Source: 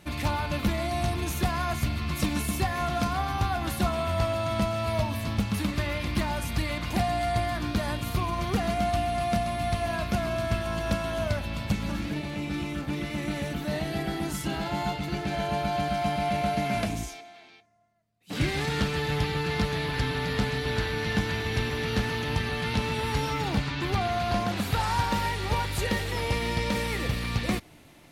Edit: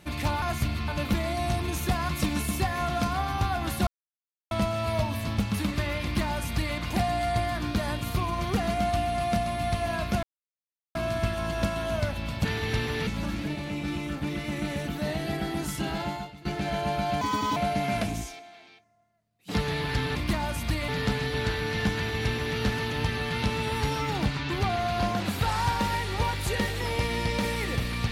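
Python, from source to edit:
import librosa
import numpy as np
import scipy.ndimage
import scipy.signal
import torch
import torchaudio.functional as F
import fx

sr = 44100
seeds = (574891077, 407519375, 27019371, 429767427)

y = fx.edit(x, sr, fx.move(start_s=1.63, length_s=0.46, to_s=0.42),
    fx.silence(start_s=3.87, length_s=0.64),
    fx.duplicate(start_s=6.03, length_s=0.73, to_s=20.2),
    fx.insert_silence(at_s=10.23, length_s=0.72),
    fx.fade_out_to(start_s=14.7, length_s=0.41, curve='qua', floor_db=-16.0),
    fx.speed_span(start_s=15.87, length_s=0.51, speed=1.44),
    fx.cut(start_s=18.36, length_s=1.23),
    fx.duplicate(start_s=21.28, length_s=0.62, to_s=11.73), tone=tone)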